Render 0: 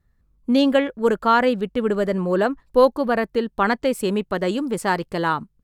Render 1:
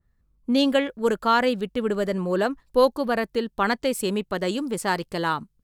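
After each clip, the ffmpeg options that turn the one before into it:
-af "adynamicequalizer=threshold=0.0178:dfrequency=2700:dqfactor=0.7:tfrequency=2700:tqfactor=0.7:attack=5:release=100:ratio=0.375:range=3.5:mode=boostabove:tftype=highshelf,volume=-3.5dB"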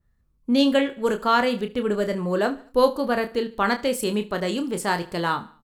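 -filter_complex "[0:a]asplit=2[a][b];[b]adelay=29,volume=-8dB[c];[a][c]amix=inputs=2:normalize=0,aecho=1:1:73|146|219:0.112|0.0482|0.0207"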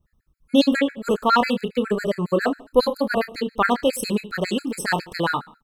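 -af "afftfilt=real='re*gt(sin(2*PI*7.3*pts/sr)*(1-2*mod(floor(b*sr/1024/1300),2)),0)':imag='im*gt(sin(2*PI*7.3*pts/sr)*(1-2*mod(floor(b*sr/1024/1300),2)),0)':win_size=1024:overlap=0.75,volume=5dB"

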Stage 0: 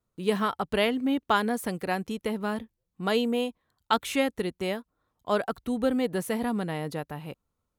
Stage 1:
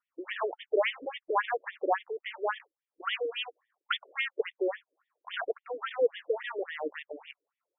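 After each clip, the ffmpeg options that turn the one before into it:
-af "acrusher=bits=3:mode=log:mix=0:aa=0.000001,tremolo=f=2:d=0.29,afftfilt=real='re*between(b*sr/1024,410*pow(2600/410,0.5+0.5*sin(2*PI*3.6*pts/sr))/1.41,410*pow(2600/410,0.5+0.5*sin(2*PI*3.6*pts/sr))*1.41)':imag='im*between(b*sr/1024,410*pow(2600/410,0.5+0.5*sin(2*PI*3.6*pts/sr))/1.41,410*pow(2600/410,0.5+0.5*sin(2*PI*3.6*pts/sr))*1.41)':win_size=1024:overlap=0.75,volume=5.5dB"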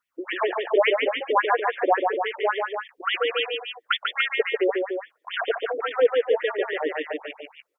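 -af "aecho=1:1:142.9|291.5:0.631|0.447,volume=7dB"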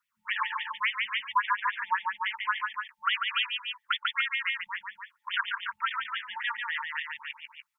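-af "afftfilt=real='re*(1-between(b*sr/4096,230,880))':imag='im*(1-between(b*sr/4096,230,880))':win_size=4096:overlap=0.75,lowshelf=f=230:g=-4,alimiter=limit=-15.5dB:level=0:latency=1:release=302"

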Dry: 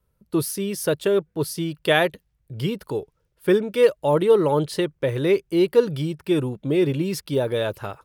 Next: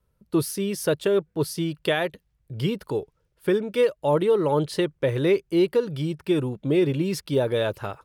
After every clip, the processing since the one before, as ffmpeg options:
-af "highshelf=f=11k:g=-6.5,alimiter=limit=-12dB:level=0:latency=1:release=338"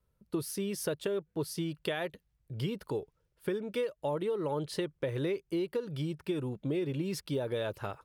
-af "acompressor=threshold=-24dB:ratio=6,volume=-5.5dB"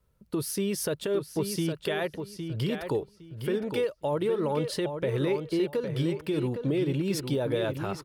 -filter_complex "[0:a]alimiter=level_in=2dB:limit=-24dB:level=0:latency=1:release=64,volume=-2dB,asplit=2[a][b];[b]adelay=811,lowpass=f=4.8k:p=1,volume=-7dB,asplit=2[c][d];[d]adelay=811,lowpass=f=4.8k:p=1,volume=0.22,asplit=2[e][f];[f]adelay=811,lowpass=f=4.8k:p=1,volume=0.22[g];[a][c][e][g]amix=inputs=4:normalize=0,volume=6dB"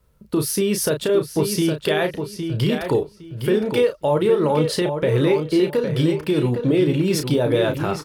-filter_complex "[0:a]asplit=2[a][b];[b]adelay=33,volume=-7.5dB[c];[a][c]amix=inputs=2:normalize=0,volume=8.5dB"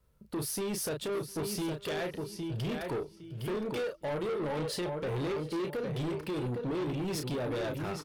-af "asoftclip=type=tanh:threshold=-22dB,aecho=1:1:705:0.0668,volume=-8.5dB"

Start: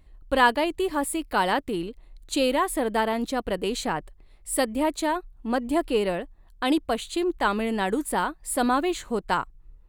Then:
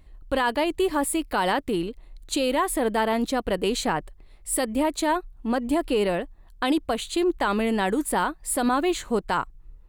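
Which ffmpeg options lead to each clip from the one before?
-af "alimiter=limit=-17dB:level=0:latency=1:release=63,volume=3dB"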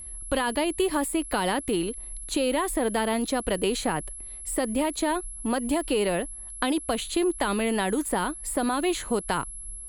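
-filter_complex "[0:a]acrossover=split=400|2200[a][b][c];[a]acompressor=threshold=-31dB:ratio=4[d];[b]acompressor=threshold=-30dB:ratio=4[e];[c]acompressor=threshold=-36dB:ratio=4[f];[d][e][f]amix=inputs=3:normalize=0,aeval=exprs='val(0)+0.00891*sin(2*PI*11000*n/s)':c=same,volume=3dB"

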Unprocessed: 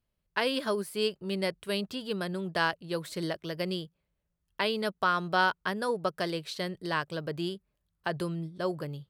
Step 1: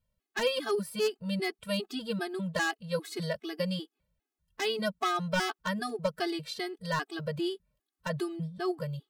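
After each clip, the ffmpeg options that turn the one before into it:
-af "aeval=exprs='0.1*(abs(mod(val(0)/0.1+3,4)-2)-1)':c=same,afftfilt=real='re*gt(sin(2*PI*2.5*pts/sr)*(1-2*mod(floor(b*sr/1024/220),2)),0)':imag='im*gt(sin(2*PI*2.5*pts/sr)*(1-2*mod(floor(b*sr/1024/220),2)),0)':win_size=1024:overlap=0.75,volume=3dB"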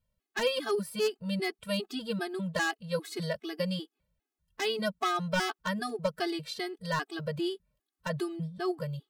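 -af anull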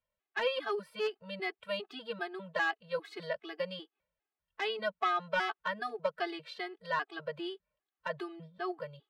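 -filter_complex "[0:a]acrossover=split=430 3500:gain=0.141 1 0.0794[a][b][c];[a][b][c]amix=inputs=3:normalize=0"

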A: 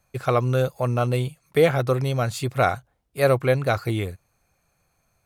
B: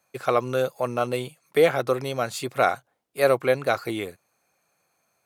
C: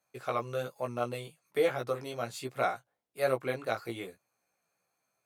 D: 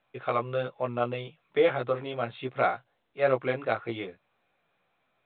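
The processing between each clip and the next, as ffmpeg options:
-af "highpass=260"
-af "flanger=delay=15.5:depth=2.2:speed=1.2,volume=-6.5dB"
-af "volume=4.5dB" -ar 8000 -c:a pcm_mulaw

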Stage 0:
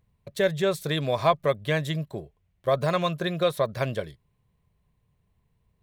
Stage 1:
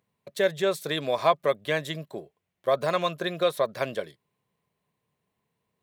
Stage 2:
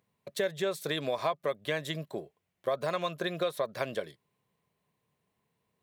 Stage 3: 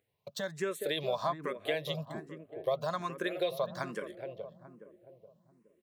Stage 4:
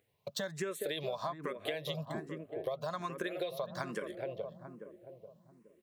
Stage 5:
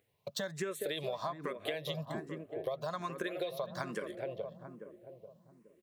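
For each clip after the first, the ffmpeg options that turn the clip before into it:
-af "highpass=250"
-af "acompressor=threshold=-29dB:ratio=3"
-filter_complex "[0:a]asplit=2[a][b];[b]adelay=420,lowpass=f=860:p=1,volume=-6dB,asplit=2[c][d];[d]adelay=420,lowpass=f=860:p=1,volume=0.52,asplit=2[e][f];[f]adelay=420,lowpass=f=860:p=1,volume=0.52,asplit=2[g][h];[h]adelay=420,lowpass=f=860:p=1,volume=0.52,asplit=2[i][j];[j]adelay=420,lowpass=f=860:p=1,volume=0.52,asplit=2[k][l];[l]adelay=420,lowpass=f=860:p=1,volume=0.52[m];[a][c][e][g][i][k][m]amix=inputs=7:normalize=0,asplit=2[n][o];[o]afreqshift=1.2[p];[n][p]amix=inputs=2:normalize=1"
-af "acompressor=threshold=-38dB:ratio=6,volume=4dB"
-af "aecho=1:1:228:0.0668"

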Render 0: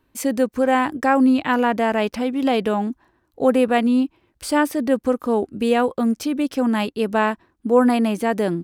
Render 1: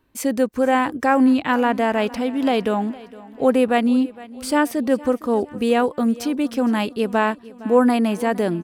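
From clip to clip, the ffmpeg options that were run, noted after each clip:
-af "aecho=1:1:461|922|1383|1844:0.1|0.049|0.024|0.0118"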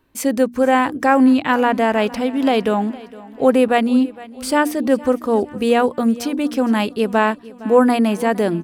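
-af "bandreject=f=60:t=h:w=6,bandreject=f=120:t=h:w=6,bandreject=f=180:t=h:w=6,bandreject=f=240:t=h:w=6,bandreject=f=300:t=h:w=6,volume=3dB"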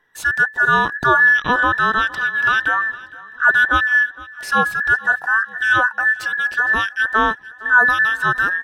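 -af "afftfilt=real='real(if(between(b,1,1012),(2*floor((b-1)/92)+1)*92-b,b),0)':imag='imag(if(between(b,1,1012),(2*floor((b-1)/92)+1)*92-b,b),0)*if(between(b,1,1012),-1,1)':win_size=2048:overlap=0.75,aemphasis=mode=reproduction:type=cd"

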